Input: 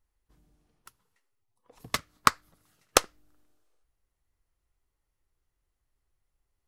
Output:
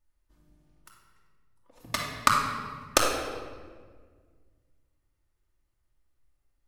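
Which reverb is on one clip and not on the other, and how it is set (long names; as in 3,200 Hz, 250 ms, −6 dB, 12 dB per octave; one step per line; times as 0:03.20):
rectangular room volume 2,000 cubic metres, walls mixed, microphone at 2.6 metres
level −3 dB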